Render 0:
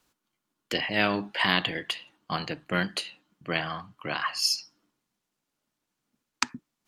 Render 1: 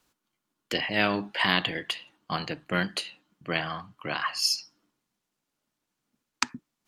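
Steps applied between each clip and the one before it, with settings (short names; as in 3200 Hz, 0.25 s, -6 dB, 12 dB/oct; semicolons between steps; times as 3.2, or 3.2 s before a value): nothing audible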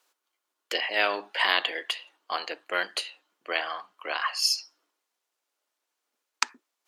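HPF 420 Hz 24 dB/oct; gain +1 dB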